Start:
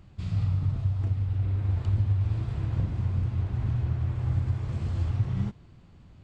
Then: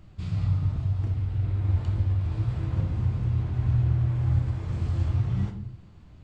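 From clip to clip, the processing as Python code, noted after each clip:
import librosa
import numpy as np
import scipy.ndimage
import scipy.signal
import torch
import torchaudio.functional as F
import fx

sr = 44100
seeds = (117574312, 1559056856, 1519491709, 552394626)

y = fx.room_shoebox(x, sr, seeds[0], volume_m3=87.0, walls='mixed', distance_m=0.46)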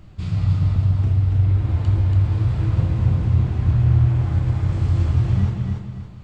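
y = fx.echo_feedback(x, sr, ms=283, feedback_pct=35, wet_db=-4)
y = y * librosa.db_to_amplitude(6.0)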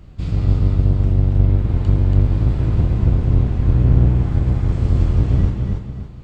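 y = fx.octave_divider(x, sr, octaves=1, level_db=0.0)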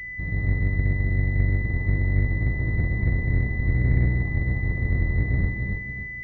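y = fx.pwm(x, sr, carrier_hz=2000.0)
y = y * librosa.db_to_amplitude(-7.5)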